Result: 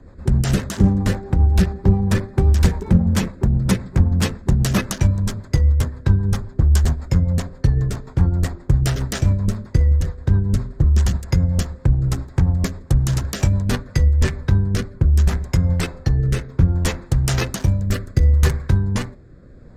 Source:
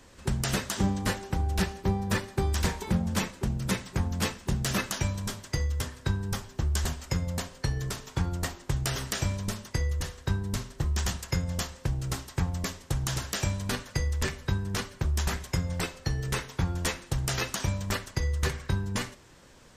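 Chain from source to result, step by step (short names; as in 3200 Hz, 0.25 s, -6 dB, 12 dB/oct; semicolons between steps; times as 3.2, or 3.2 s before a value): Wiener smoothing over 15 samples; low shelf 220 Hz +9 dB; rotary speaker horn 7.5 Hz, later 0.7 Hz, at 13.43; 17.61–18.78 high shelf 9600 Hz +8.5 dB; in parallel at -9.5 dB: overloaded stage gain 21.5 dB; on the sum: gain +5.5 dB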